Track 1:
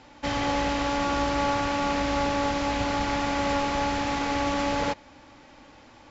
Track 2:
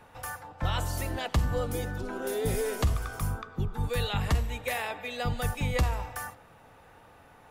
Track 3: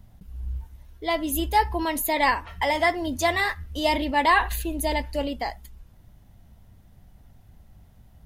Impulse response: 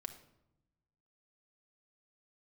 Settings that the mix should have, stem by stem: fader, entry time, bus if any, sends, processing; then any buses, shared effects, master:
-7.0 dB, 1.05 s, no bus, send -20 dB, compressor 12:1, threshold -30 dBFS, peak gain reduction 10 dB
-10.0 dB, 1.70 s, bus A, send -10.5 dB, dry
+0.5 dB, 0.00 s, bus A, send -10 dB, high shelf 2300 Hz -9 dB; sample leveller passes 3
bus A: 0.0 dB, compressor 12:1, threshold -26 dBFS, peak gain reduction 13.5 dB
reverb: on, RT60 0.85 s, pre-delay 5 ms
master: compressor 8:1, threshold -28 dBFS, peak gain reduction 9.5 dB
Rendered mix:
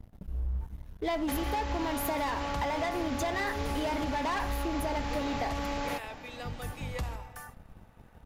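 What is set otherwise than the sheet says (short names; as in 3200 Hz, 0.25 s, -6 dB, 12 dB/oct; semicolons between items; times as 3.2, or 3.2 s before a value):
stem 1 -7.0 dB -> +1.0 dB; stem 2: entry 1.70 s -> 1.20 s; stem 3 +0.5 dB -> -9.0 dB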